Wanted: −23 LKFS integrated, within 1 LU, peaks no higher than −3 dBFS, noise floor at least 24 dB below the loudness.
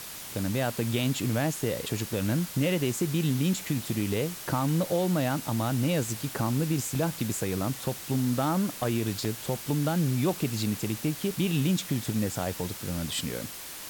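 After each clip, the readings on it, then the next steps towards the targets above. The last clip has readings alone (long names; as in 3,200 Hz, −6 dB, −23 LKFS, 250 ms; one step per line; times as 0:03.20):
number of dropouts 3; longest dropout 1.3 ms; background noise floor −41 dBFS; target noise floor −53 dBFS; integrated loudness −29.0 LKFS; sample peak −15.0 dBFS; target loudness −23.0 LKFS
→ repair the gap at 0:06.95/0:09.25/0:11.31, 1.3 ms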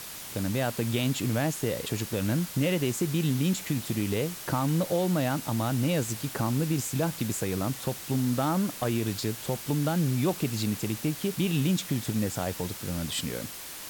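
number of dropouts 0; background noise floor −41 dBFS; target noise floor −53 dBFS
→ noise reduction from a noise print 12 dB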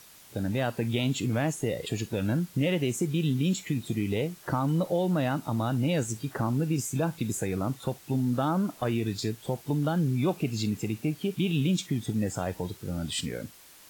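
background noise floor −53 dBFS; integrated loudness −29.0 LKFS; sample peak −15.5 dBFS; target loudness −23.0 LKFS
→ level +6 dB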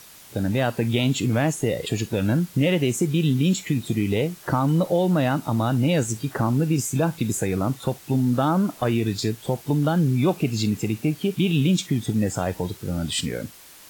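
integrated loudness −23.0 LKFS; sample peak −9.5 dBFS; background noise floor −47 dBFS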